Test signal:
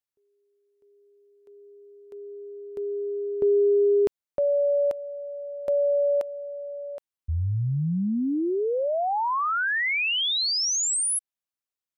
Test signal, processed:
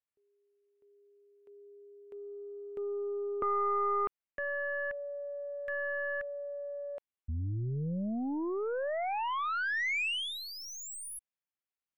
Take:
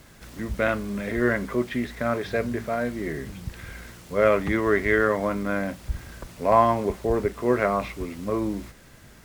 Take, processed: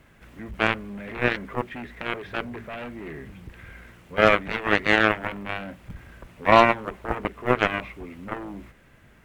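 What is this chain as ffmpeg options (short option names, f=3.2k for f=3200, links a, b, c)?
-af "aeval=exprs='0.562*(cos(1*acos(clip(val(0)/0.562,-1,1)))-cos(1*PI/2))+0.0141*(cos(5*acos(clip(val(0)/0.562,-1,1)))-cos(5*PI/2))+0.00708*(cos(6*acos(clip(val(0)/0.562,-1,1)))-cos(6*PI/2))+0.126*(cos(7*acos(clip(val(0)/0.562,-1,1)))-cos(7*PI/2))':c=same,highshelf=f=3.5k:t=q:w=1.5:g=-8.5,volume=2.5dB"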